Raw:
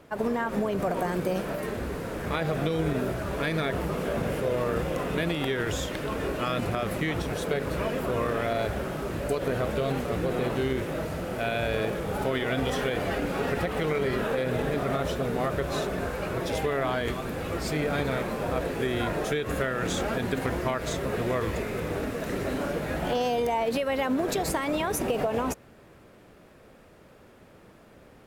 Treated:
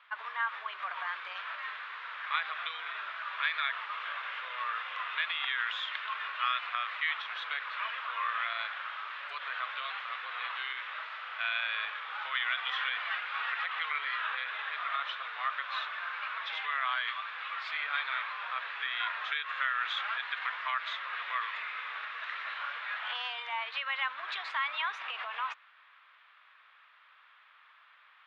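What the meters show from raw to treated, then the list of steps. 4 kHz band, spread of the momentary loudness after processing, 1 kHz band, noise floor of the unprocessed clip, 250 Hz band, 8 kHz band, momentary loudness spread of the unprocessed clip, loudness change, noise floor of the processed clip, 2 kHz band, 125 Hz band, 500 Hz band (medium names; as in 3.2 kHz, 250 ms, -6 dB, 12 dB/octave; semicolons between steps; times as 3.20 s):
+1.0 dB, 7 LU, -2.5 dB, -53 dBFS, under -40 dB, under -25 dB, 4 LU, -5.5 dB, -61 dBFS, +2.0 dB, under -40 dB, -28.5 dB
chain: elliptic band-pass 1.1–3.6 kHz, stop band 70 dB; trim +2.5 dB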